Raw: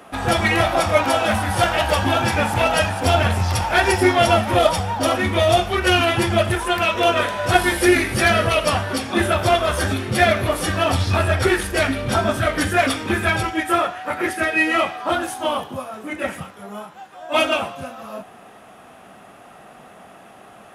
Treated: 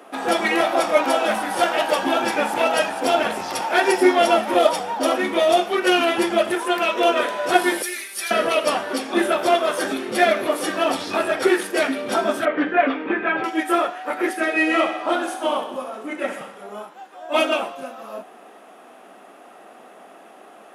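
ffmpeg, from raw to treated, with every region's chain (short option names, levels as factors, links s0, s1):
-filter_complex "[0:a]asettb=1/sr,asplit=3[s0][s1][s2];[s0]atrim=end=7.824[s3];[s1]atrim=start=7.82:end=8.31,asetpts=PTS-STARTPTS,afade=t=in:d=0.004:c=qsin,afade=t=out:st=0.486:d=0.004:c=qsin,aderivative,aecho=1:1:5.1:0.57,atrim=end_sample=21609[s4];[s2]atrim=start=8.306[s5];[s3][s4]acrossfade=d=0.004:c1=hsin:c2=qsin[s6];[s6][s5]acrossfade=d=0.004:c1=qsin:c2=hsin,asettb=1/sr,asplit=3[s7][s8][s9];[s7]atrim=end=12.454[s10];[s8]atrim=start=12.45:end=13.44,asetpts=PTS-STARTPTS,afade=t=in:d=0.004:c=qsin,afade=t=out:st=0.986:d=0.004:c=qsin,lowpass=f=2600:w=0.5412,lowpass=f=2600:w=1.3066,aecho=1:1:6.9:0.34,atrim=end_sample=43659[s11];[s9]atrim=start=13.436[s12];[s10][s11]acrossfade=d=0.004:c1=hsin:c2=qsin[s13];[s13][s12]acrossfade=d=0.004:c1=qsin:c2=hsin,asettb=1/sr,asplit=3[s14][s15][s16];[s14]atrim=end=14.394[s17];[s15]atrim=start=14.39:end=16.83,asetpts=PTS-STARTPTS,afade=t=in:d=0.004:c=qsin,afade=t=out:st=2.436:d=0.004:c=qsin,lowpass=11000,aecho=1:1:63|126|189|252|315|378|441:0.316|0.19|0.114|0.0683|0.041|0.0246|0.0148,atrim=end_sample=107604[s18];[s16]atrim=start=16.826[s19];[s17][s18]acrossfade=d=0.004:c1=hsin:c2=qsin[s20];[s20][s19]acrossfade=d=0.004:c1=qsin:c2=hsin,highpass=f=290:w=0.5412,highpass=f=290:w=1.3066,lowshelf=f=440:g=9,volume=0.708"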